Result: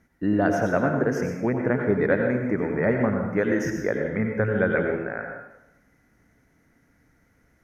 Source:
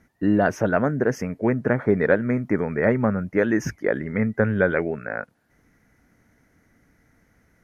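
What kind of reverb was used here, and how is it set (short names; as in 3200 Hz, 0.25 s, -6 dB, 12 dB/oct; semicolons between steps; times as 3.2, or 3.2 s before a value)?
plate-style reverb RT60 0.91 s, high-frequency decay 0.75×, pre-delay 75 ms, DRR 2.5 dB; gain -3.5 dB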